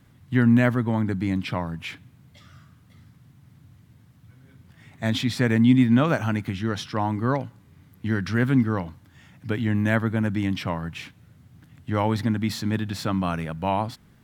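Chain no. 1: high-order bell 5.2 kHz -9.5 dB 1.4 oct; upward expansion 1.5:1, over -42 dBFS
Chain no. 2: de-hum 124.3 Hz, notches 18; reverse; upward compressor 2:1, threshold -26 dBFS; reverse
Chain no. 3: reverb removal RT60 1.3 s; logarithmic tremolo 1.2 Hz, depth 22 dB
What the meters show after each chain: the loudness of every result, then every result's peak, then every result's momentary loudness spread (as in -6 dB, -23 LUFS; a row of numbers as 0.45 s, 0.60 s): -27.0 LUFS, -24.5 LUFS, -32.0 LUFS; -7.0 dBFS, -6.5 dBFS, -9.0 dBFS; 16 LU, 22 LU, 19 LU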